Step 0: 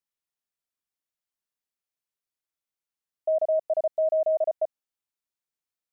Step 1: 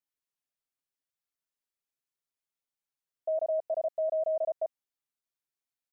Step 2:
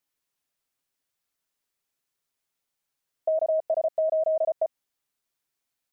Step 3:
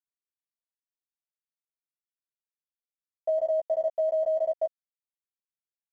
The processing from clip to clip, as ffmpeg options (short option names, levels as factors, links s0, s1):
-af "aecho=1:1:7.4:0.97,volume=0.501"
-af "acompressor=threshold=0.0282:ratio=6,volume=2.82"
-filter_complex "[0:a]aresample=16000,aeval=exprs='sgn(val(0))*max(abs(val(0))-0.00119,0)':c=same,aresample=44100,asplit=2[s0][s1];[s1]adelay=14,volume=0.531[s2];[s0][s2]amix=inputs=2:normalize=0,volume=0.631"